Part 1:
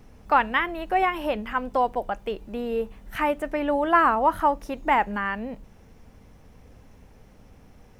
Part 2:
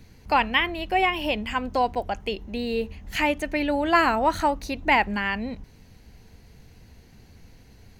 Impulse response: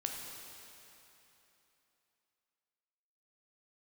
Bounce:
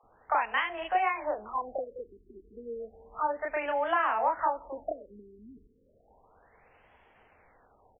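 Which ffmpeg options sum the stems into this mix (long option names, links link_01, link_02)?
-filter_complex "[0:a]highpass=frequency=580:width=0.5412,highpass=frequency=580:width=1.3066,acompressor=threshold=-24dB:ratio=6,volume=-0.5dB[link_01];[1:a]lowshelf=frequency=100:gain=6,acompressor=threshold=-25dB:ratio=6,adelay=30,volume=-2.5dB,asplit=2[link_02][link_03];[link_03]volume=-14.5dB[link_04];[2:a]atrim=start_sample=2205[link_05];[link_04][link_05]afir=irnorm=-1:irlink=0[link_06];[link_01][link_02][link_06]amix=inputs=3:normalize=0,acrossover=split=440 2800:gain=0.0631 1 0.224[link_07][link_08][link_09];[link_07][link_08][link_09]amix=inputs=3:normalize=0,afftfilt=real='re*lt(b*sr/1024,420*pow(3500/420,0.5+0.5*sin(2*PI*0.32*pts/sr)))':imag='im*lt(b*sr/1024,420*pow(3500/420,0.5+0.5*sin(2*PI*0.32*pts/sr)))':win_size=1024:overlap=0.75"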